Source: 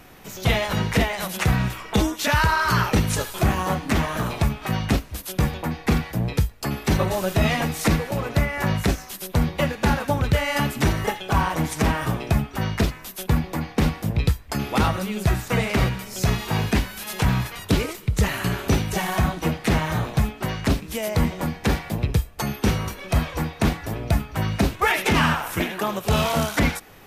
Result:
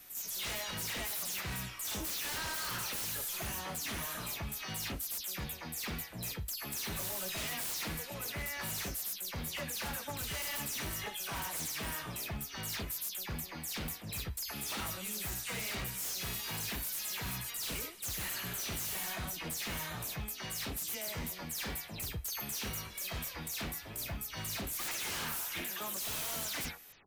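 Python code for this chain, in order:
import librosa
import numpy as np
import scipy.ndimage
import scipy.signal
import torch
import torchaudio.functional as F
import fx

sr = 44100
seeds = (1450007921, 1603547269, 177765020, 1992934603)

y = fx.spec_delay(x, sr, highs='early', ms=147)
y = F.preemphasis(torch.from_numpy(y), 0.9).numpy()
y = 10.0 ** (-33.0 / 20.0) * (np.abs((y / 10.0 ** (-33.0 / 20.0) + 3.0) % 4.0 - 2.0) - 1.0)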